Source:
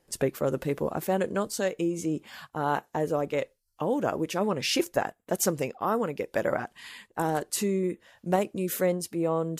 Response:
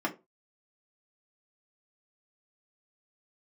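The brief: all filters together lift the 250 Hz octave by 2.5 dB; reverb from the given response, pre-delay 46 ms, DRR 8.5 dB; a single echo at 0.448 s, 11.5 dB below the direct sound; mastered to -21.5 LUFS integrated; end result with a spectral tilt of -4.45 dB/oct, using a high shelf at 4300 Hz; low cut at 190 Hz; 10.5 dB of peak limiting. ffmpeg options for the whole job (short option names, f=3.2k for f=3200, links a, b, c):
-filter_complex "[0:a]highpass=190,equalizer=f=250:t=o:g=5.5,highshelf=f=4.3k:g=5.5,alimiter=limit=-20dB:level=0:latency=1,aecho=1:1:448:0.266,asplit=2[a][b];[1:a]atrim=start_sample=2205,adelay=46[c];[b][c]afir=irnorm=-1:irlink=0,volume=-16dB[d];[a][d]amix=inputs=2:normalize=0,volume=8.5dB"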